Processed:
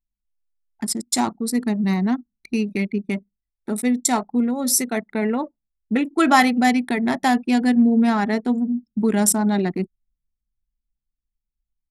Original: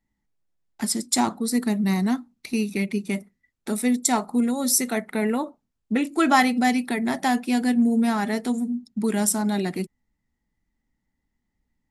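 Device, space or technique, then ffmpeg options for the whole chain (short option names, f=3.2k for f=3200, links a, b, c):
voice memo with heavy noise removal: -af "anlmdn=39.8,dynaudnorm=f=400:g=9:m=5.5dB"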